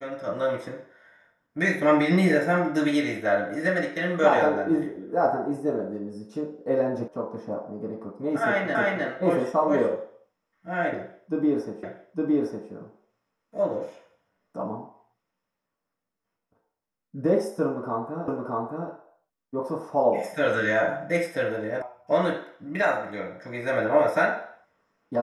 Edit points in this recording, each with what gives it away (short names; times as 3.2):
7.08 sound cut off
8.75 repeat of the last 0.31 s
11.83 repeat of the last 0.86 s
18.28 repeat of the last 0.62 s
21.82 sound cut off